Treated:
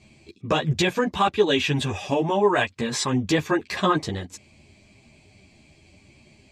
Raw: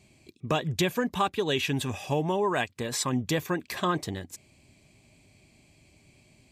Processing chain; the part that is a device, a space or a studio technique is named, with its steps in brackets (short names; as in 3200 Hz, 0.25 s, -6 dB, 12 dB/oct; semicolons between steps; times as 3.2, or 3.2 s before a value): string-machine ensemble chorus (ensemble effect; LPF 6600 Hz 12 dB/oct); gain +9 dB